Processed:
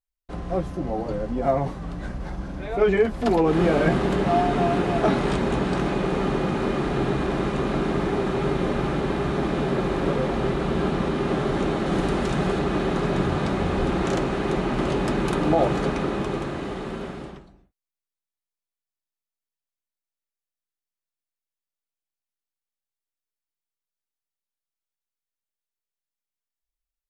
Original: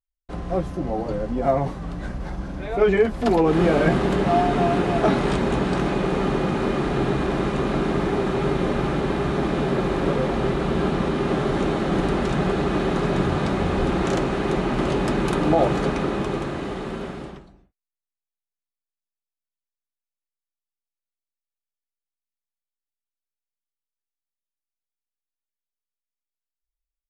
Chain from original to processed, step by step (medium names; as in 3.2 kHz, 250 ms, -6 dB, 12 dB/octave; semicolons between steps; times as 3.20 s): 11.86–12.59 s: treble shelf 5.4 kHz +5 dB; trim -1.5 dB